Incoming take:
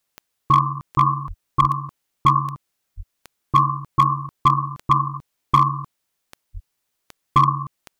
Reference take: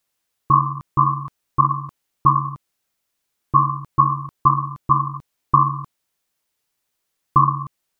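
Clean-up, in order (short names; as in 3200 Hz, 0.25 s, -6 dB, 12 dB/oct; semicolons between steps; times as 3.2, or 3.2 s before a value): clip repair -7 dBFS; de-click; de-plosive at 1.27/1.6/2.96/6.53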